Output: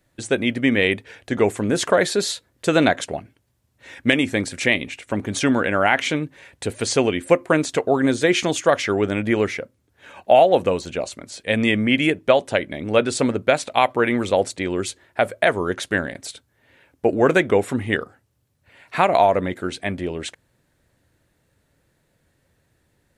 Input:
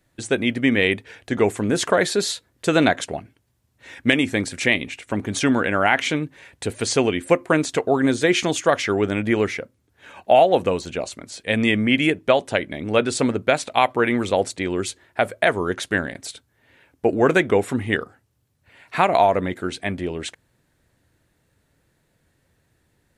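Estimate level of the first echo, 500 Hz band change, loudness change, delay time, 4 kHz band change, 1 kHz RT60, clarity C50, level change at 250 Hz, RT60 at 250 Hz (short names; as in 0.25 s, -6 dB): none, +1.0 dB, +0.5 dB, none, 0.0 dB, none, none, 0.0 dB, none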